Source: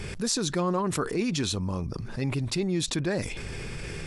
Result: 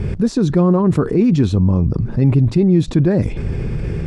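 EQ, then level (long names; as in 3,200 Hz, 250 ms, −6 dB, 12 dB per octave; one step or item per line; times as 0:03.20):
high-pass filter 160 Hz 6 dB per octave
spectral tilt −4.5 dB per octave
low-shelf EQ 470 Hz +3.5 dB
+4.5 dB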